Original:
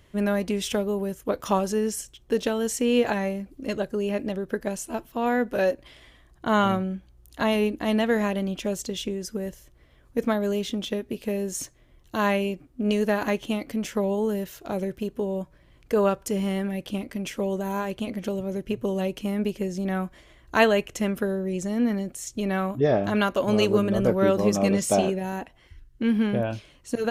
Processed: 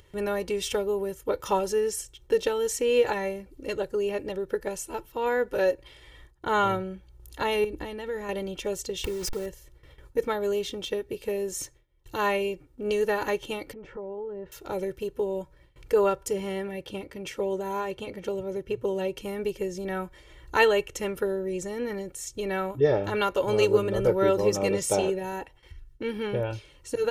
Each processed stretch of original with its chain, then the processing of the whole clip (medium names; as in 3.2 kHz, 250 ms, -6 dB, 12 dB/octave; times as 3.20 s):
7.64–8.29 s: bass shelf 190 Hz +9 dB + compression 12:1, threshold -25 dBFS
9.04–9.46 s: send-on-delta sampling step -39 dBFS + swell ahead of each attack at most 22 dB/s
13.73–14.52 s: compression 10:1, threshold -31 dBFS + low-pass 1.2 kHz
16.33–19.18 s: high-pass 49 Hz + treble shelf 7.1 kHz -6 dB + tape noise reduction on one side only decoder only
whole clip: gate with hold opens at -46 dBFS; comb 2.2 ms, depth 74%; upward compressor, threshold -37 dBFS; trim -3 dB